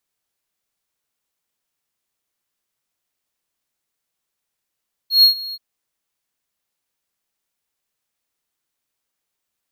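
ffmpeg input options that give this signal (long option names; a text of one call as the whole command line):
ffmpeg -f lavfi -i "aevalsrc='0.631*(1-4*abs(mod(4290*t+0.25,1)-0.5))':duration=0.48:sample_rate=44100,afade=type=in:duration=0.132,afade=type=out:start_time=0.132:duration=0.108:silence=0.0944,afade=type=out:start_time=0.44:duration=0.04" out.wav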